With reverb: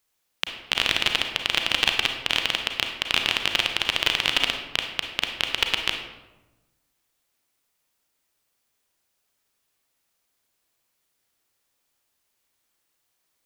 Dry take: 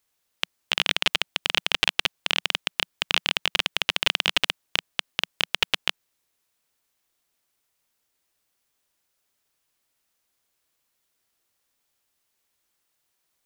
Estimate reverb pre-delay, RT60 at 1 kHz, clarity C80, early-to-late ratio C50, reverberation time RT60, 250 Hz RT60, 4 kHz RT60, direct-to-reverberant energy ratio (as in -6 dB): 32 ms, 1.0 s, 8.5 dB, 5.5 dB, 1.1 s, 1.5 s, 0.65 s, 4.0 dB